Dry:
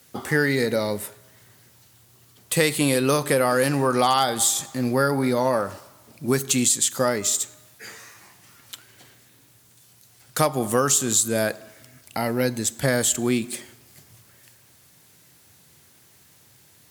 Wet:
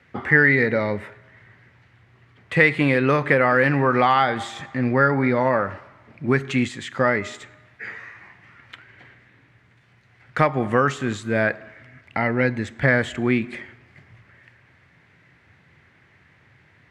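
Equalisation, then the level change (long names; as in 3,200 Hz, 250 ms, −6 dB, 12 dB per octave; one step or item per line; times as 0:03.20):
low-pass with resonance 2,000 Hz, resonance Q 3.2
low-shelf EQ 130 Hz +7.5 dB
0.0 dB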